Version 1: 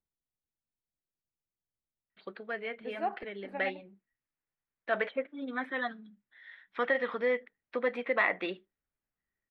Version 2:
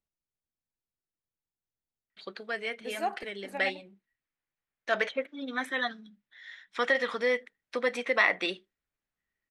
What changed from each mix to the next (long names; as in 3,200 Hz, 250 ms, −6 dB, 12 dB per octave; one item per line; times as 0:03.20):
master: remove high-frequency loss of the air 440 metres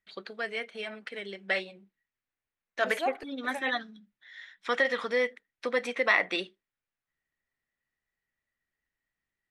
first voice: entry −2.10 s